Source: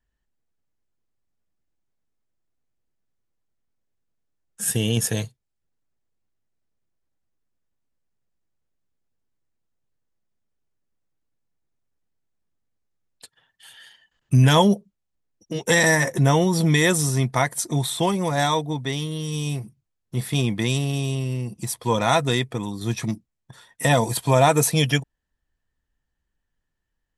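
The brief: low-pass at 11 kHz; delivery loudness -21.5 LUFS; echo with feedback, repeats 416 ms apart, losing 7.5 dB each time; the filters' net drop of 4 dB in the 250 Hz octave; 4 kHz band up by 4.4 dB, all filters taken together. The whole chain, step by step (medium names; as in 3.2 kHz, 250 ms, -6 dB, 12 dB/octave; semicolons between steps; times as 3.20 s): low-pass 11 kHz; peaking EQ 250 Hz -6.5 dB; peaking EQ 4 kHz +5.5 dB; feedback delay 416 ms, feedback 42%, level -7.5 dB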